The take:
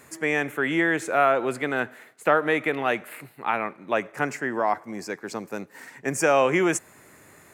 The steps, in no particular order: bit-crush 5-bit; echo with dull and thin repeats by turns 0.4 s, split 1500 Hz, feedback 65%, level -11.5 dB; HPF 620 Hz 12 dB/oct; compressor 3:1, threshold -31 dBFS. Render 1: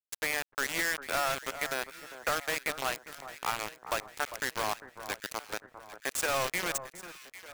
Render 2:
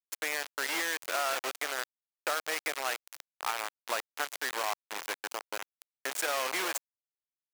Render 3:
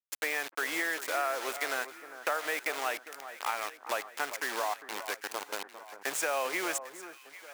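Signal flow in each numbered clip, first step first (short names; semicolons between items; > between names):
HPF > compressor > bit-crush > echo with dull and thin repeats by turns; compressor > echo with dull and thin repeats by turns > bit-crush > HPF; bit-crush > HPF > compressor > echo with dull and thin repeats by turns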